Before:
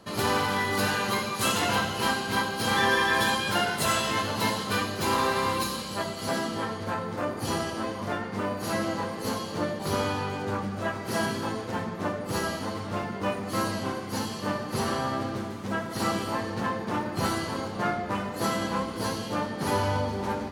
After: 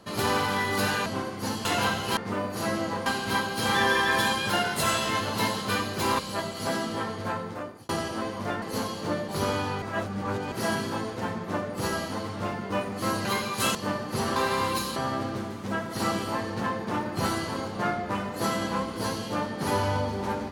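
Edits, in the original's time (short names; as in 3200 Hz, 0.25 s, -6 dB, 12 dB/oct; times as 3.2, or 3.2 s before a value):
1.06–1.56 swap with 13.76–14.35
5.21–5.81 move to 14.96
6.97–7.51 fade out
8.24–9.13 move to 2.08
10.33–11.03 reverse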